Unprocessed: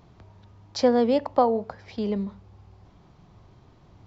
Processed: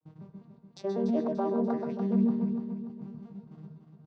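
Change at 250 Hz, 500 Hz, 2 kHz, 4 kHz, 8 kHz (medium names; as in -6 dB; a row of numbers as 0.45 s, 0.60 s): 0.0 dB, -8.0 dB, under -10 dB, under -15 dB, no reading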